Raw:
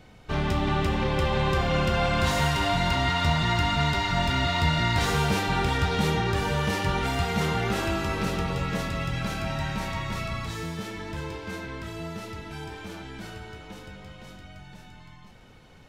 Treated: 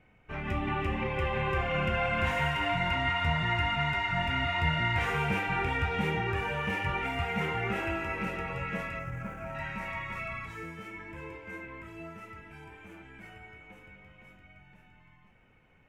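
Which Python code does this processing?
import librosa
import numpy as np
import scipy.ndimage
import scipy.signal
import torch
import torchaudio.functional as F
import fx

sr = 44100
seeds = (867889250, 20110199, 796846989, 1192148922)

y = fx.median_filter(x, sr, points=15, at=(8.99, 9.55))
y = fx.high_shelf_res(y, sr, hz=3200.0, db=-9.5, q=3.0)
y = fx.noise_reduce_blind(y, sr, reduce_db=7)
y = F.gain(torch.from_numpy(y), -5.0).numpy()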